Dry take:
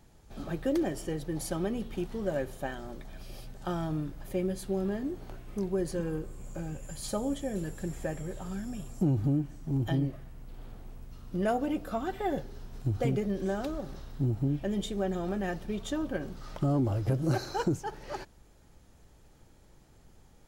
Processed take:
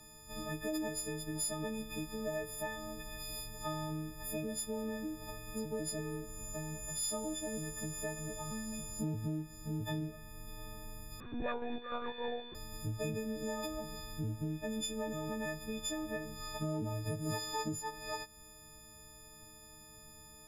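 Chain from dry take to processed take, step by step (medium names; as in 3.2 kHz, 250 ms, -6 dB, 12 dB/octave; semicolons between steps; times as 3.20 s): partials quantised in pitch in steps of 6 st; compression 2:1, threshold -42 dBFS, peak gain reduction 11 dB; 11.20–12.55 s: monotone LPC vocoder at 8 kHz 240 Hz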